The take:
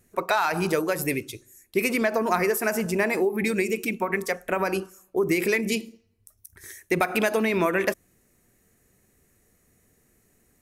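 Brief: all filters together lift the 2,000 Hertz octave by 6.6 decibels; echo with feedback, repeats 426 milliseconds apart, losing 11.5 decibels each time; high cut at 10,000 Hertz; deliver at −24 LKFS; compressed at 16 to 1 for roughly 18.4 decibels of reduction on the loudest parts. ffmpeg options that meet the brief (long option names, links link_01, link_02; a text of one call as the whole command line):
ffmpeg -i in.wav -af "lowpass=10000,equalizer=frequency=2000:width_type=o:gain=8,acompressor=threshold=-34dB:ratio=16,aecho=1:1:426|852|1278:0.266|0.0718|0.0194,volume=14.5dB" out.wav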